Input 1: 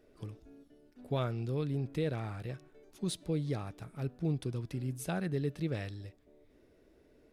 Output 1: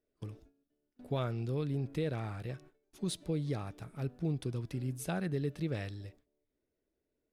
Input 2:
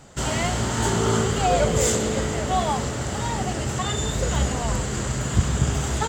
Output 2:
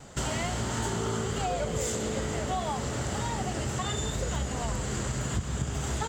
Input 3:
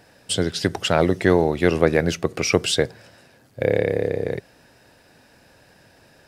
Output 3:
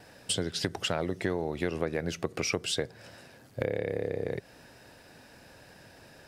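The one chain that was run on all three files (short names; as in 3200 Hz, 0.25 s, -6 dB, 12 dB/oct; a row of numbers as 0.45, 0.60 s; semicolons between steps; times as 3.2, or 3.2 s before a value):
gate with hold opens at -47 dBFS; compressor 5:1, threshold -28 dBFS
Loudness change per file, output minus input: -0.5, -7.5, -11.0 LU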